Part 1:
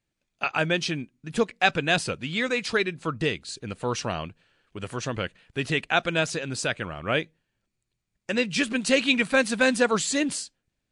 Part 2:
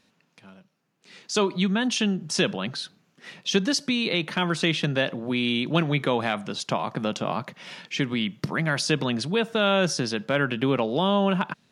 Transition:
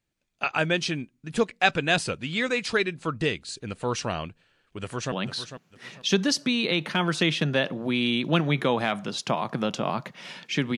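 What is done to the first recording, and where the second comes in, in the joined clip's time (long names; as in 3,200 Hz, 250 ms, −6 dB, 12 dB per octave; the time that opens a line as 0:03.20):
part 1
0:04.80–0:05.12: delay throw 450 ms, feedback 30%, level −10.5 dB
0:05.12: continue with part 2 from 0:02.54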